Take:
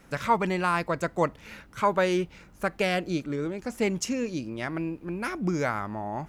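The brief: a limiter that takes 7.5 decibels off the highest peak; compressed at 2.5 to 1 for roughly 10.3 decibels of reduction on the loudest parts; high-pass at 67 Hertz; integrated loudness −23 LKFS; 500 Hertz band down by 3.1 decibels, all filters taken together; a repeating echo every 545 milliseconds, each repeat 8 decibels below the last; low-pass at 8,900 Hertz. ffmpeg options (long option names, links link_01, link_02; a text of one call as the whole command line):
ffmpeg -i in.wav -af "highpass=67,lowpass=8900,equalizer=frequency=500:width_type=o:gain=-4,acompressor=threshold=-35dB:ratio=2.5,alimiter=level_in=5dB:limit=-24dB:level=0:latency=1,volume=-5dB,aecho=1:1:545|1090|1635|2180|2725:0.398|0.159|0.0637|0.0255|0.0102,volume=15.5dB" out.wav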